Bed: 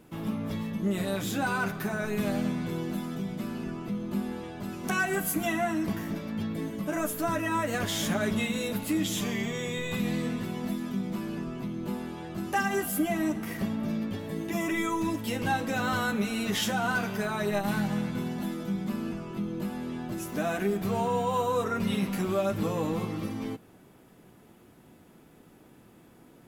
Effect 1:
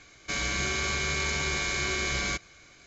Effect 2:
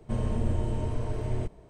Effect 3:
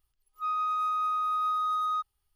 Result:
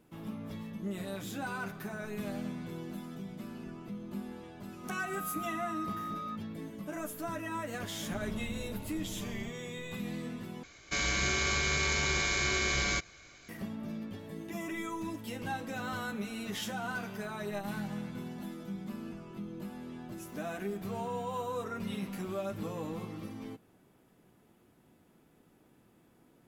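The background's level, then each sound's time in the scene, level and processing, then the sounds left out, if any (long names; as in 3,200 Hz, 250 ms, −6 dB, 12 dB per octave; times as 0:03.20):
bed −9 dB
0:04.34: mix in 3 −11.5 dB + volume swells 548 ms
0:08.02: mix in 2 −16 dB
0:10.63: overwrite with 1 −1 dB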